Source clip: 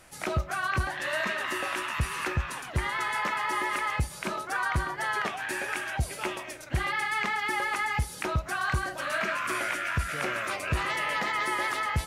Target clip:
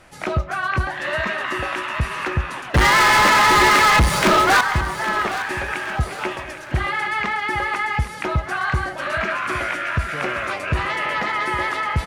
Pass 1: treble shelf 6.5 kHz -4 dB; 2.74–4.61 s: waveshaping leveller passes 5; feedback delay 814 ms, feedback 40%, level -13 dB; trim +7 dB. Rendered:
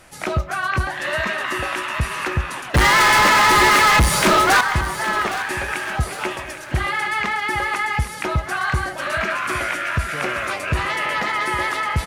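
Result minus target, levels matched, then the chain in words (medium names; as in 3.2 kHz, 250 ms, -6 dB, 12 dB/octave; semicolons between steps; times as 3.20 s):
8 kHz band +2.5 dB
treble shelf 6.5 kHz -15 dB; 2.74–4.61 s: waveshaping leveller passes 5; feedback delay 814 ms, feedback 40%, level -13 dB; trim +7 dB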